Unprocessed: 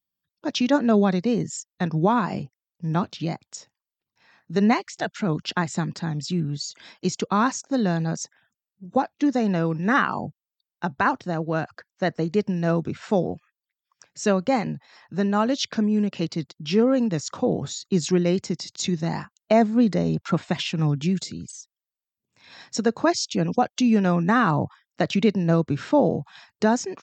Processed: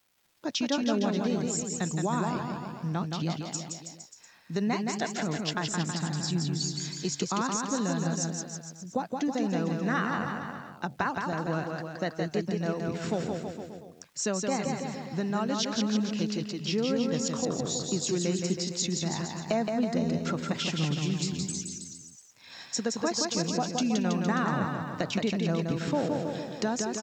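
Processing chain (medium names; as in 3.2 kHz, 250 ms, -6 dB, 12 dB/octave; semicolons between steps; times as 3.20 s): treble shelf 6.2 kHz +12 dB; compression 2:1, threshold -29 dBFS, peak gain reduction 9 dB; crackle 560 per s -54 dBFS; on a send: bouncing-ball echo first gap 170 ms, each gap 0.9×, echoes 5; on the sum: trim -2.5 dB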